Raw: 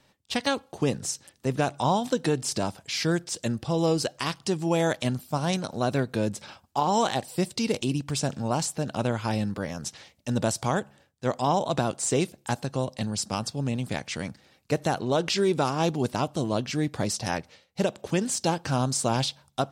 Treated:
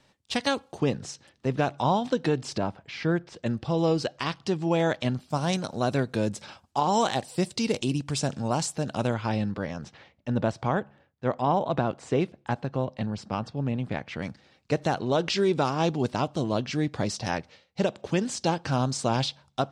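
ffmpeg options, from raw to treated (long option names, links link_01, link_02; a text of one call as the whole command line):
ffmpeg -i in.wav -af "asetnsamples=nb_out_samples=441:pad=0,asendcmd='0.8 lowpass f 4200;2.58 lowpass f 2200;3.46 lowpass f 4300;5.3 lowpass f 9300;9.14 lowpass f 4100;9.84 lowpass f 2400;14.22 lowpass f 5600',lowpass=9500" out.wav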